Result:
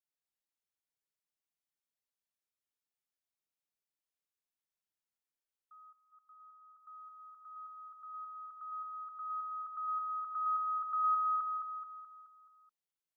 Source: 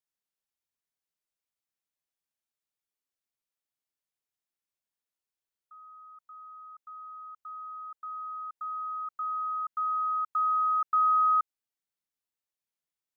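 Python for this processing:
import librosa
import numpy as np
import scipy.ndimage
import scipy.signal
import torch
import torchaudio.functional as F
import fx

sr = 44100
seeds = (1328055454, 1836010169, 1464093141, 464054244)

p1 = fx.lowpass(x, sr, hz=1200.0, slope=6, at=(5.9, 6.78), fade=0.02)
p2 = p1 + fx.echo_feedback(p1, sr, ms=214, feedback_pct=50, wet_db=-5, dry=0)
y = F.gain(torch.from_numpy(p2), -6.5).numpy()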